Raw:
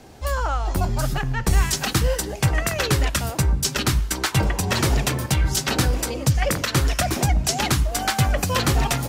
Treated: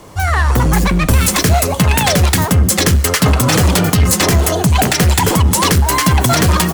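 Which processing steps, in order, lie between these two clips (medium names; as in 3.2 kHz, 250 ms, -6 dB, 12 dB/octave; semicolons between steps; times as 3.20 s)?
level rider gain up to 7 dB; in parallel at -5 dB: wavefolder -17 dBFS; on the sum: speed mistake 33 rpm record played at 45 rpm; peaking EQ 2.4 kHz -2.5 dB 0.33 oct; band-stop 3.7 kHz, Q 27; loudness maximiser +4.5 dB; trim -1 dB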